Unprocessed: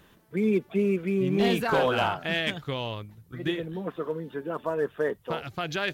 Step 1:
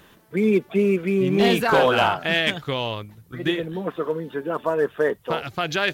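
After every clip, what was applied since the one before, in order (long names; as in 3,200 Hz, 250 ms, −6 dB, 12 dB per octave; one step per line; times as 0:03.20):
low-shelf EQ 220 Hz −5 dB
level +7 dB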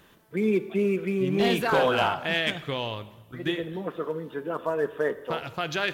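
dense smooth reverb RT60 1.2 s, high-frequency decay 0.85×, DRR 13 dB
level −5 dB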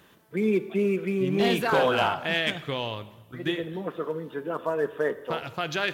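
high-pass filter 66 Hz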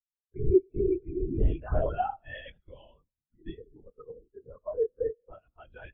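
linear-prediction vocoder at 8 kHz whisper
every bin expanded away from the loudest bin 2.5 to 1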